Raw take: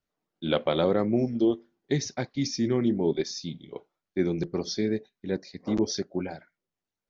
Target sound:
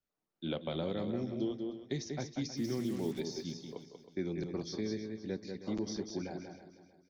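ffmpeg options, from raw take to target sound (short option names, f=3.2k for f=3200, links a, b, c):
-filter_complex "[0:a]asplit=2[a][b];[b]aecho=0:1:187:0.398[c];[a][c]amix=inputs=2:normalize=0,asplit=3[d][e][f];[d]afade=t=out:st=2.56:d=0.02[g];[e]acrusher=bits=6:mix=0:aa=0.5,afade=t=in:st=2.56:d=0.02,afade=t=out:st=3.19:d=0.02[h];[f]afade=t=in:st=3.19:d=0.02[i];[g][h][i]amix=inputs=3:normalize=0,acrossover=split=250|1100|2300[j][k][l][m];[j]acompressor=threshold=-31dB:ratio=4[n];[k]acompressor=threshold=-31dB:ratio=4[o];[l]acompressor=threshold=-52dB:ratio=4[p];[m]acompressor=threshold=-38dB:ratio=4[q];[n][o][p][q]amix=inputs=4:normalize=0,asplit=2[r][s];[s]aecho=0:1:316|632|948:0.211|0.0719|0.0244[t];[r][t]amix=inputs=2:normalize=0,volume=-6.5dB"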